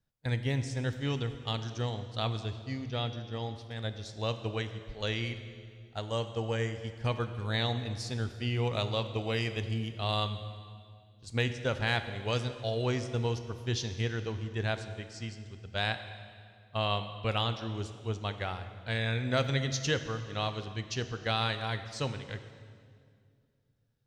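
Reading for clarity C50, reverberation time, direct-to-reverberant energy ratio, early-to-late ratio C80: 10.5 dB, 2.2 s, 9.0 dB, 11.5 dB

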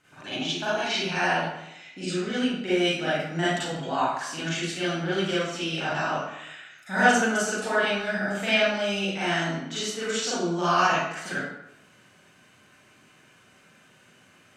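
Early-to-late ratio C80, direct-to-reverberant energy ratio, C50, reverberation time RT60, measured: 2.0 dB, -11.5 dB, -3.0 dB, 0.85 s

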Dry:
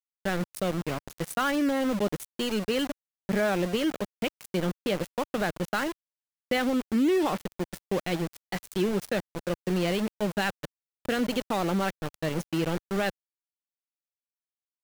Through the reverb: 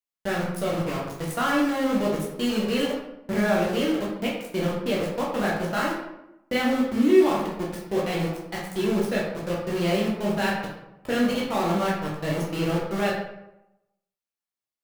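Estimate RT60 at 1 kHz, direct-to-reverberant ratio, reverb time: 0.85 s, -5.0 dB, 0.90 s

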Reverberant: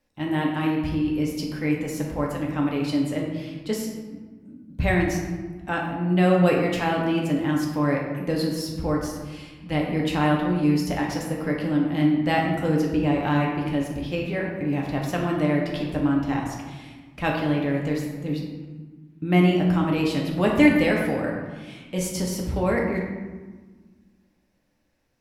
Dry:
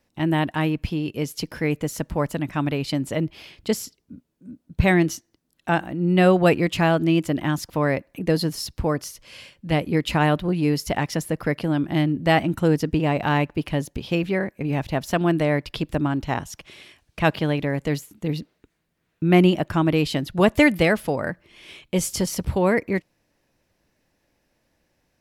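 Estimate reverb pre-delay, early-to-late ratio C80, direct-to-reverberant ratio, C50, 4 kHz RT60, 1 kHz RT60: 4 ms, 4.5 dB, -2.0 dB, 3.0 dB, 0.80 s, 1.4 s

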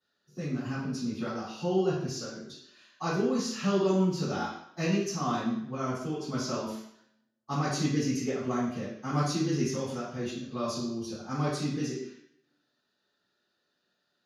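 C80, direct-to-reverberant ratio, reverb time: 5.5 dB, -14.0 dB, 0.70 s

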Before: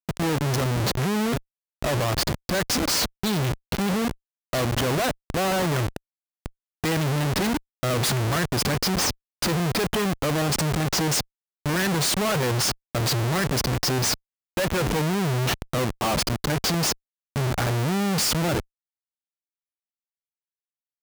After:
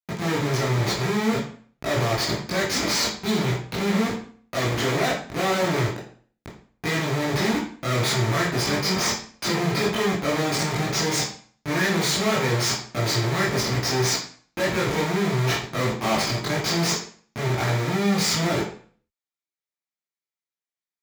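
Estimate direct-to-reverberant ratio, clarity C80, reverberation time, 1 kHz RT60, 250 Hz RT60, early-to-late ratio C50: -5.5 dB, 10.0 dB, 0.45 s, 0.45 s, 0.50 s, 5.0 dB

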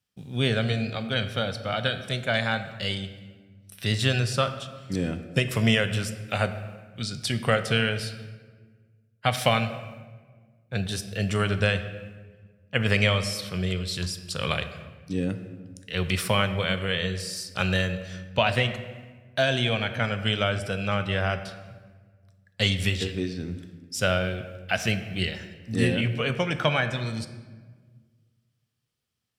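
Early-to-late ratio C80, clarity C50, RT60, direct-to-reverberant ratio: 12.5 dB, 11.0 dB, 1.5 s, 9.0 dB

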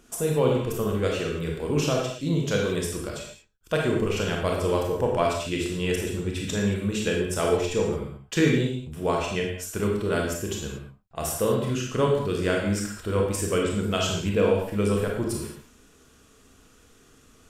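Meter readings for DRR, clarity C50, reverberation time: -1.0 dB, 2.0 dB, no single decay rate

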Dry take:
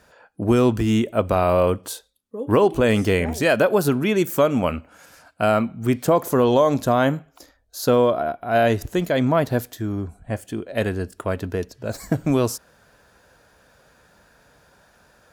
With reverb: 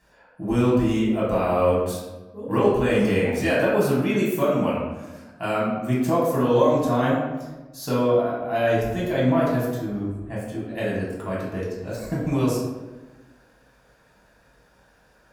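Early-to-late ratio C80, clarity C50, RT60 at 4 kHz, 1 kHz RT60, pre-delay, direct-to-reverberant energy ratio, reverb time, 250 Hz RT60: 4.0 dB, 1.0 dB, 0.70 s, 1.1 s, 3 ms, -7.0 dB, 1.2 s, 1.6 s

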